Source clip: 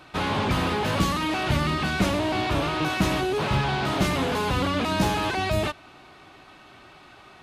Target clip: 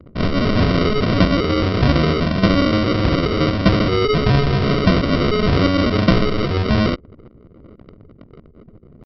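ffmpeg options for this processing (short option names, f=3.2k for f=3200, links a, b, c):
-filter_complex "[0:a]acrossover=split=2800[a][b];[b]acompressor=threshold=-49dB:ratio=4:attack=1:release=60[c];[a][c]amix=inputs=2:normalize=0,aresample=11025,acrusher=samples=13:mix=1:aa=0.000001,aresample=44100,atempo=0.82,anlmdn=0.0398,volume=9dB"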